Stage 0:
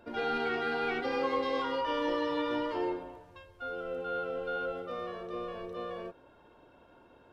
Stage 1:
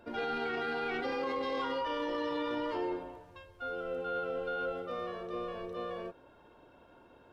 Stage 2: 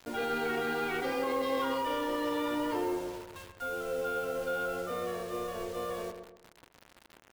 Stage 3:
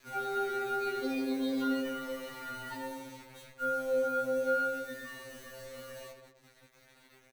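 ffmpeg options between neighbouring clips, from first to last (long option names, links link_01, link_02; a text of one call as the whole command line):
ffmpeg -i in.wav -af "alimiter=level_in=3dB:limit=-24dB:level=0:latency=1:release=16,volume=-3dB" out.wav
ffmpeg -i in.wav -filter_complex "[0:a]asplit=2[link_01][link_02];[link_02]asoftclip=type=tanh:threshold=-38dB,volume=-7dB[link_03];[link_01][link_03]amix=inputs=2:normalize=0,acrusher=bits=7:mix=0:aa=0.000001,asplit=2[link_04][link_05];[link_05]adelay=128,lowpass=frequency=1500:poles=1,volume=-7dB,asplit=2[link_06][link_07];[link_07]adelay=128,lowpass=frequency=1500:poles=1,volume=0.4,asplit=2[link_08][link_09];[link_09]adelay=128,lowpass=frequency=1500:poles=1,volume=0.4,asplit=2[link_10][link_11];[link_11]adelay=128,lowpass=frequency=1500:poles=1,volume=0.4,asplit=2[link_12][link_13];[link_13]adelay=128,lowpass=frequency=1500:poles=1,volume=0.4[link_14];[link_04][link_06][link_08][link_10][link_12][link_14]amix=inputs=6:normalize=0" out.wav
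ffmpeg -i in.wav -filter_complex "[0:a]asplit=2[link_01][link_02];[link_02]adelay=15,volume=-2dB[link_03];[link_01][link_03]amix=inputs=2:normalize=0,afftfilt=real='re*2.45*eq(mod(b,6),0)':imag='im*2.45*eq(mod(b,6),0)':win_size=2048:overlap=0.75,volume=-2dB" out.wav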